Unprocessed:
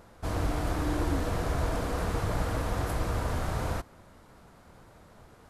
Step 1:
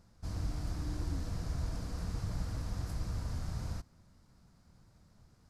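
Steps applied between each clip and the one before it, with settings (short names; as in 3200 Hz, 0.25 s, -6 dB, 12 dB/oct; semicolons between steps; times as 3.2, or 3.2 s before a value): EQ curve 180 Hz 0 dB, 440 Hz -13 dB, 3400 Hz -9 dB, 4900 Hz +2 dB, 11000 Hz -8 dB; gain -5.5 dB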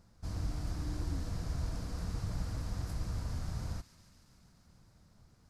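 thin delay 0.142 s, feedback 80%, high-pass 2000 Hz, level -14 dB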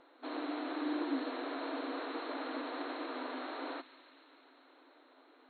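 FFT band-pass 250–4300 Hz; air absorption 59 m; gain +11 dB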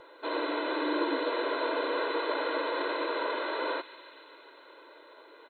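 comb 2 ms, depth 92%; gain +7.5 dB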